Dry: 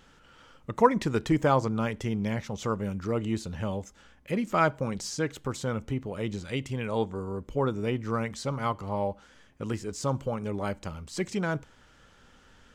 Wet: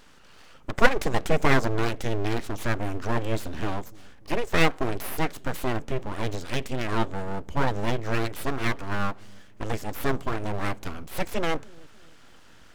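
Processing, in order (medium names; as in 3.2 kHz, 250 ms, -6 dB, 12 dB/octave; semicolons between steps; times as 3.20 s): full-wave rectifier; feedback echo behind a low-pass 294 ms, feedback 37%, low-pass 470 Hz, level -21 dB; trim +5.5 dB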